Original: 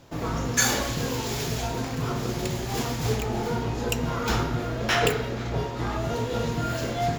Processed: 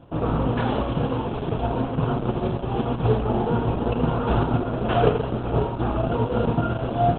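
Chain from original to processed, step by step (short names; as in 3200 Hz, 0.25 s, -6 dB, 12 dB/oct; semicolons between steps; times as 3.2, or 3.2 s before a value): spectral whitening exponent 0.6; running mean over 22 samples; gain +8.5 dB; Opus 8 kbps 48000 Hz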